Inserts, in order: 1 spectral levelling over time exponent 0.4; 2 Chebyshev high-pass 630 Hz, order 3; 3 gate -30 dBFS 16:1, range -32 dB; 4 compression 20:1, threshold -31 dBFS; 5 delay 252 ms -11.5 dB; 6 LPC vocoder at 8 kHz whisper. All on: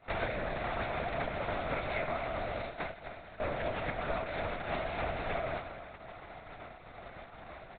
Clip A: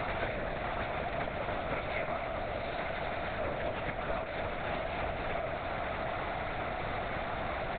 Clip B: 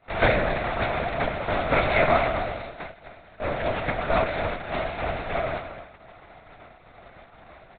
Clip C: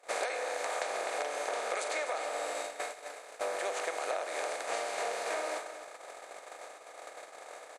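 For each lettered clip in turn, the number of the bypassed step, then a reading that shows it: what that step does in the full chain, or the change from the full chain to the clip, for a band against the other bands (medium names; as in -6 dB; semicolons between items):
3, momentary loudness spread change -13 LU; 4, mean gain reduction 5.5 dB; 6, 250 Hz band -11.5 dB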